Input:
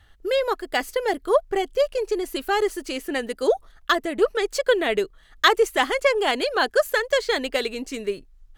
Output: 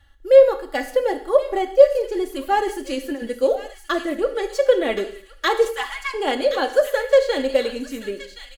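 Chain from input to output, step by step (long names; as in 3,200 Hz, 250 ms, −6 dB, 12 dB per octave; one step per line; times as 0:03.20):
0:05.65–0:06.14: elliptic band-stop filter 180–890 Hz
dynamic equaliser 530 Hz, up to +7 dB, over −32 dBFS, Q 1
harmonic and percussive parts rebalanced percussive −6 dB
comb filter 3.6 ms, depth 60%
0:02.67–0:03.28: compressor whose output falls as the input rises −24 dBFS, ratio −0.5
delay with a high-pass on its return 1,072 ms, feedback 38%, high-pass 2,200 Hz, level −8 dB
reverb whose tail is shaped and stops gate 240 ms falling, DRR 7.5 dB
level −1.5 dB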